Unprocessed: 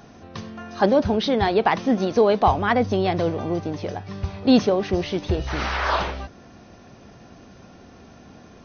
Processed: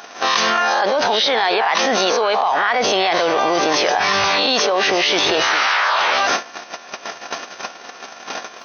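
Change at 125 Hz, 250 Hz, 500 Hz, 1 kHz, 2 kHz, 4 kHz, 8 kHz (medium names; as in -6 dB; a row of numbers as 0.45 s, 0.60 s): -12.0 dB, -5.0 dB, +3.0 dB, +7.5 dB, +12.5 dB, +15.0 dB, no reading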